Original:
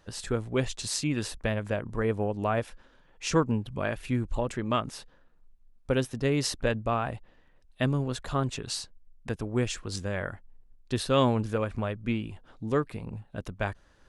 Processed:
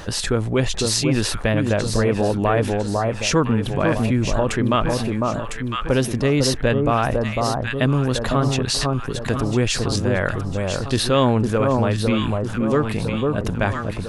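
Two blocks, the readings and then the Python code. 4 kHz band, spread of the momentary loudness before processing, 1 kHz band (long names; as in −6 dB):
+11.5 dB, 13 LU, +10.0 dB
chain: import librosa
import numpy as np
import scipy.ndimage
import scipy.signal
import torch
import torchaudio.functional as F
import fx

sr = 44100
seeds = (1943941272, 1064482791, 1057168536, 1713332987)

y = fx.echo_alternate(x, sr, ms=502, hz=1200.0, feedback_pct=58, wet_db=-4.5)
y = fx.dynamic_eq(y, sr, hz=7800.0, q=2.7, threshold_db=-55.0, ratio=4.0, max_db=-4)
y = fx.env_flatten(y, sr, amount_pct=50)
y = y * librosa.db_to_amplitude(5.0)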